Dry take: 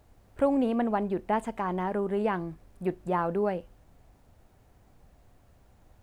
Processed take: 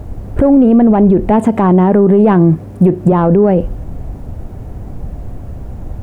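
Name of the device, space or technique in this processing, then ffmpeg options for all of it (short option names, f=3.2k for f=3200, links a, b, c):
mastering chain: -filter_complex "[0:a]asettb=1/sr,asplit=3[a][b][c];[a]atrim=end=1.304[d];[b]atrim=start=1.3:end=3.12,asetpts=PTS-STARTPTS,afade=t=in:d=0.004:c=qsin,afade=t=out:st=1.816:d=0.004:c=qsin,highpass=f=78:w=0.5412,highpass=f=78:w=1.3066[e];[c]atrim=start=3.116[f];[d][e]acrossfade=d=0.004:c1=hsin:c2=qsin[g];[g][f]acrossfade=d=0.004:c1=qsin:c2=hsin,equalizer=f=4.1k:t=o:w=0.77:g=-2.5,acompressor=threshold=-30dB:ratio=2,asoftclip=type=tanh:threshold=-21.5dB,tiltshelf=f=710:g=9,alimiter=level_in=26.5dB:limit=-1dB:release=50:level=0:latency=1,volume=-1dB"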